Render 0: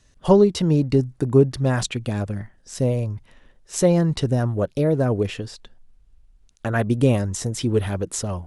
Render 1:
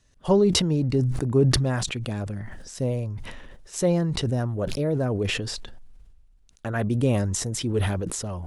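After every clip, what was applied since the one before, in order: decay stretcher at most 29 dB/s; trim -5.5 dB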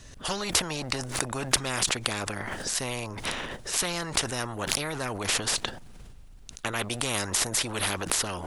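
spectrum-flattening compressor 4:1; trim +3 dB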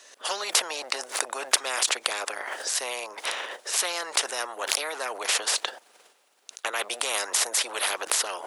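high-pass 460 Hz 24 dB/octave; trim +2 dB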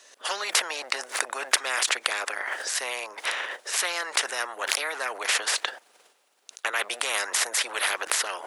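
dynamic bell 1.8 kHz, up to +7 dB, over -44 dBFS, Q 1.2; trim -2 dB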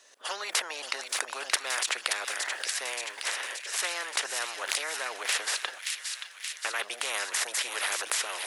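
feedback echo behind a high-pass 576 ms, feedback 68%, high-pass 2.2 kHz, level -4 dB; trim -5 dB

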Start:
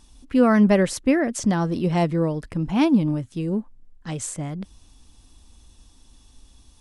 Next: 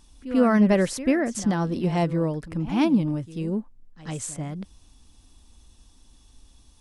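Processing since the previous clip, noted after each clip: pre-echo 91 ms -14 dB; trim -2.5 dB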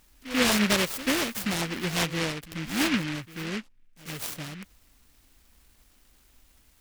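bass shelf 370 Hz -9 dB; delay time shaken by noise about 2 kHz, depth 0.32 ms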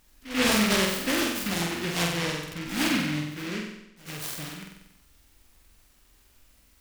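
flutter echo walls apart 8 m, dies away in 0.84 s; trim -2 dB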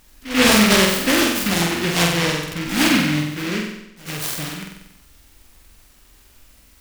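modulation noise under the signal 25 dB; trim +9 dB

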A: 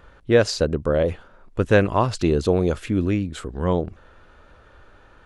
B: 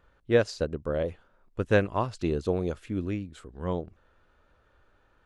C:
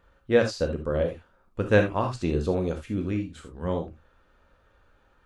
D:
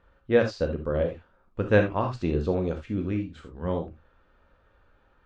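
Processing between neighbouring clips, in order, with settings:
upward expansion 1.5:1, over -29 dBFS; trim -5 dB
gated-style reverb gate 100 ms flat, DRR 3.5 dB; trim +1 dB
distance through air 130 m

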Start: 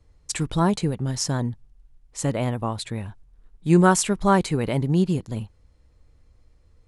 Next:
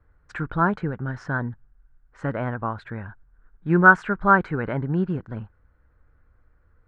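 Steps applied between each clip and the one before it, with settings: resonant low-pass 1.5 kHz, resonance Q 7; trim -3.5 dB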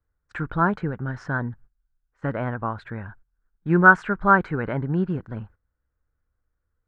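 gate -46 dBFS, range -17 dB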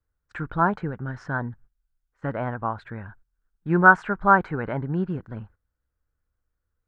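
dynamic bell 800 Hz, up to +6 dB, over -34 dBFS, Q 1.6; trim -2.5 dB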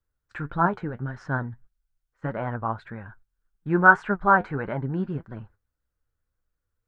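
flange 1.7 Hz, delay 4.7 ms, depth 5.3 ms, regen +57%; trim +3 dB

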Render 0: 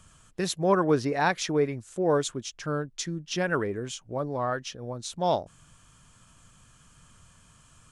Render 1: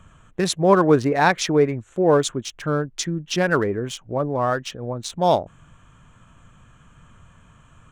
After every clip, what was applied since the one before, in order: local Wiener filter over 9 samples; trim +7.5 dB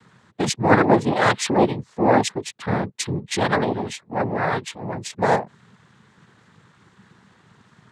noise-vocoded speech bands 6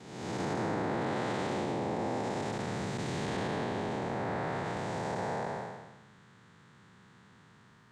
spectral blur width 575 ms; compression 5:1, threshold -27 dBFS, peak gain reduction 8.5 dB; trim -3 dB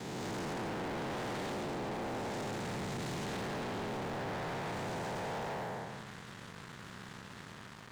waveshaping leveller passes 5; peak limiter -31.5 dBFS, peak gain reduction 10 dB; trim -4.5 dB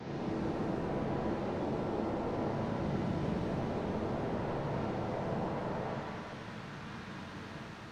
one-bit delta coder 32 kbps, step -60 dBFS; pitch-shifted reverb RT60 1.8 s, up +7 st, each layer -8 dB, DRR -3.5 dB

